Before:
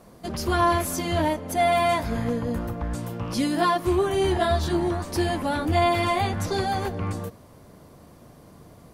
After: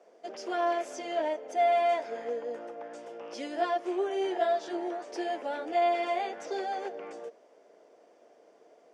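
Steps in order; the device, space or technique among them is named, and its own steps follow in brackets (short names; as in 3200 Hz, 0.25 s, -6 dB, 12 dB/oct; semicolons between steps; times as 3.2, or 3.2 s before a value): phone speaker on a table (speaker cabinet 360–6500 Hz, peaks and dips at 450 Hz +6 dB, 660 Hz +6 dB, 1100 Hz -9 dB, 4100 Hz -10 dB); gain -8 dB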